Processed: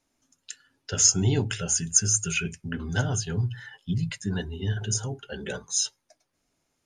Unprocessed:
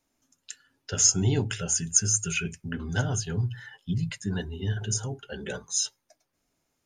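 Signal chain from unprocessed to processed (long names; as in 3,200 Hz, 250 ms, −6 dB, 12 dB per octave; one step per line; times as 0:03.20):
Chebyshev low-pass filter 12,000 Hz, order 6
level +2 dB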